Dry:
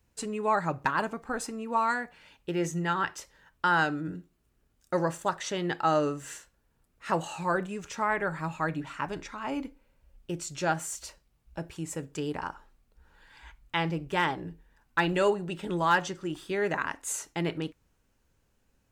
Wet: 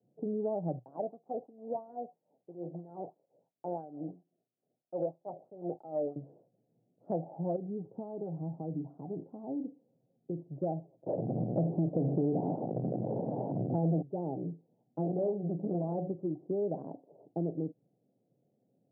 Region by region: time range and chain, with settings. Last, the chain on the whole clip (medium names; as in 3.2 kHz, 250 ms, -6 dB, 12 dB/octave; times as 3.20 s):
0.79–6.16 s: block-companded coder 3-bit + bass shelf 250 Hz +10.5 dB + wah-wah 3 Hz 560–2700 Hz, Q 2.3
7.56–10.46 s: compression 2.5:1, threshold -35 dBFS + band-stop 590 Hz, Q 5.7
11.06–14.02 s: jump at every zero crossing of -34.5 dBFS + hum notches 50/100/150/200/250/300/350/400/450 Hz + waveshaping leveller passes 5
14.98–16.13 s: tilt EQ -2 dB/octave + de-hum 61.86 Hz, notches 9 + transformer saturation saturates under 860 Hz
whole clip: de-esser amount 95%; Chebyshev band-pass 120–740 Hz, order 5; compression 3:1, threshold -34 dBFS; trim +3 dB